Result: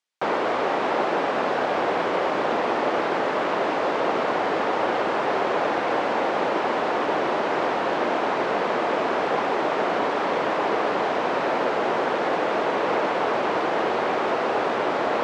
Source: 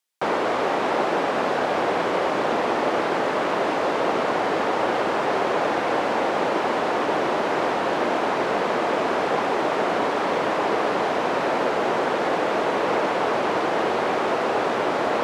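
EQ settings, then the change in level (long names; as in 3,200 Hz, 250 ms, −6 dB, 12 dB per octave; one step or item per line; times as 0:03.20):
high-frequency loss of the air 68 metres
low-shelf EQ 230 Hz −4 dB
0.0 dB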